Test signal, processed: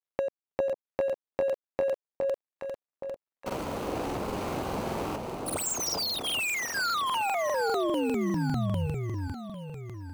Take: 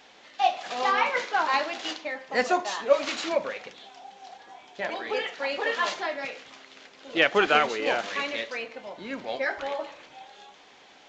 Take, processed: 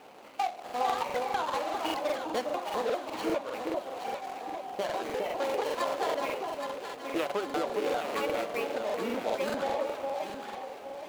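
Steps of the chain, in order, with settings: median filter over 25 samples; HPF 320 Hz 6 dB/oct; compressor 10:1, threshold -37 dBFS; on a send: echo with dull and thin repeats by turns 0.411 s, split 1000 Hz, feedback 64%, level -2.5 dB; on the sum: crackling interface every 0.20 s, samples 2048, repeat, from 0.65; gain +8.5 dB

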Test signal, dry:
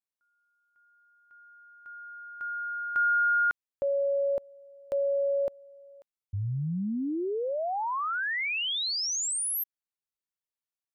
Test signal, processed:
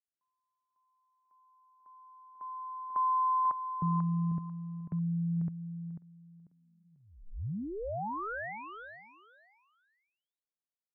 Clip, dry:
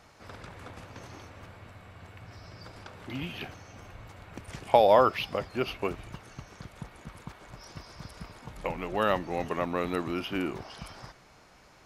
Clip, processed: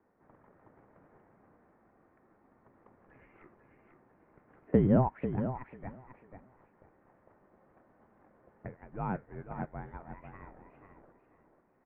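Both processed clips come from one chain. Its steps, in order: mistuned SSB -390 Hz 590–2300 Hz; tilt shelf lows +5.5 dB, about 670 Hz; on a send: feedback echo 0.493 s, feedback 25%, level -6.5 dB; on the sum: dynamic EQ 340 Hz, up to -7 dB, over -42 dBFS, Q 0.77; upward expander 1.5:1, over -45 dBFS

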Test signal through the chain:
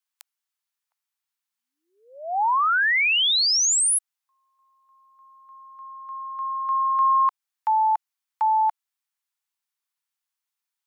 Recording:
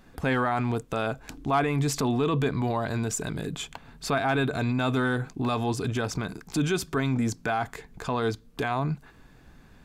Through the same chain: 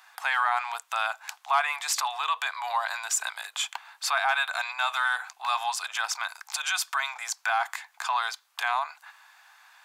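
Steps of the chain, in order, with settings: steep high-pass 790 Hz 48 dB/oct; in parallel at +1.5 dB: limiter -24.5 dBFS

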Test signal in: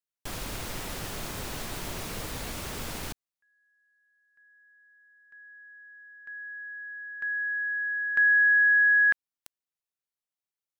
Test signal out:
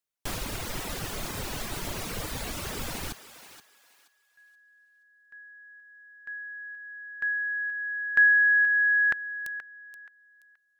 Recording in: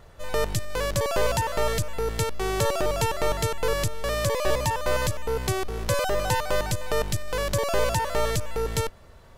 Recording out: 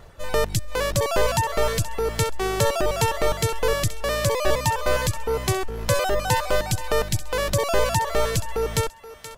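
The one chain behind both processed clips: reverb removal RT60 0.97 s; thinning echo 0.477 s, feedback 27%, high-pass 670 Hz, level -12 dB; gain +4 dB

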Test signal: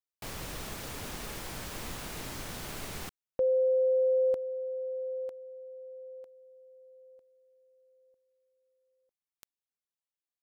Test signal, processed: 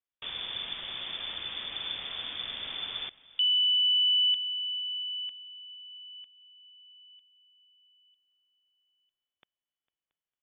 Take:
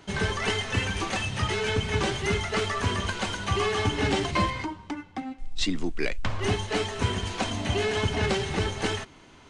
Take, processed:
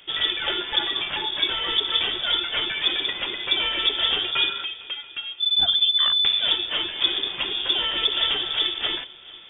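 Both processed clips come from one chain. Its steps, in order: low shelf 260 Hz +4 dB; multi-head echo 0.226 s, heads second and third, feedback 45%, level -24 dB; inverted band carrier 3500 Hz

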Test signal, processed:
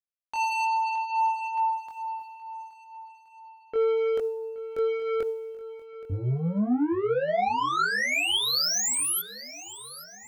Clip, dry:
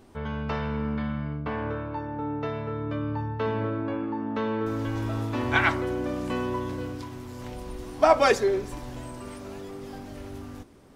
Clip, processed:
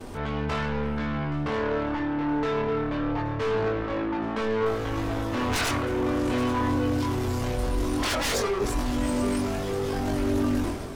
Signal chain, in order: expander -49 dBFS; sine folder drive 18 dB, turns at -6 dBFS; limiter -16 dBFS; soft clip -21 dBFS; transient shaper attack -3 dB, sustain +10 dB; chorus voices 6, 0.2 Hz, delay 22 ms, depth 2.3 ms; swung echo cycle 1.372 s, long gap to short 1.5:1, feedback 32%, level -17 dB

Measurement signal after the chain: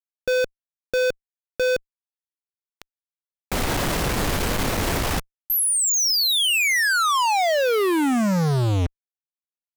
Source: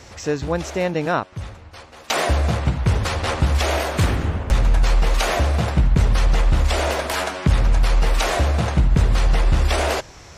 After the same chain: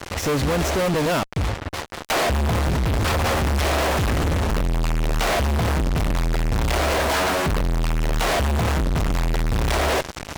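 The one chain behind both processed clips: high shelf 3000 Hz -10.5 dB; fuzz box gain 45 dB, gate -39 dBFS; gain -6 dB

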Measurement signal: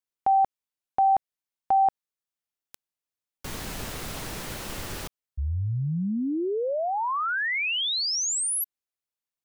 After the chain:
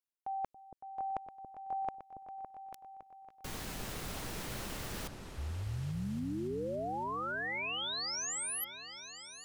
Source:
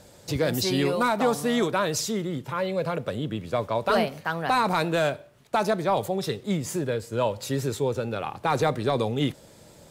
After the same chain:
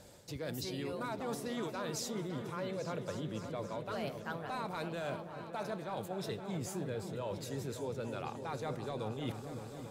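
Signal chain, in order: reverse; compressor 10:1, threshold -31 dBFS; reverse; repeats that get brighter 0.28 s, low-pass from 400 Hz, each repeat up 2 oct, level -6 dB; gain -5.5 dB

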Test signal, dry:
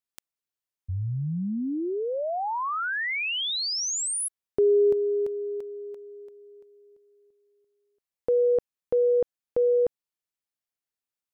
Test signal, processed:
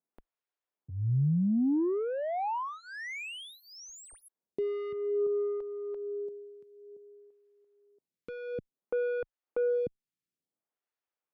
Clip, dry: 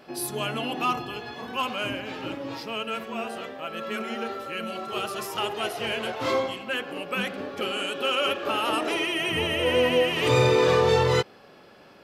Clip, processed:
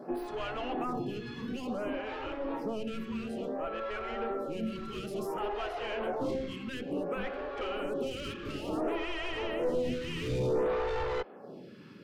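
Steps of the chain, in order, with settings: in parallel at +1.5 dB: compressor 10:1, threshold -36 dBFS; on the sum: Bessel high-pass 190 Hz, order 4; soft clip -27 dBFS; tilt -3.5 dB/oct; photocell phaser 0.57 Hz; gain -2.5 dB

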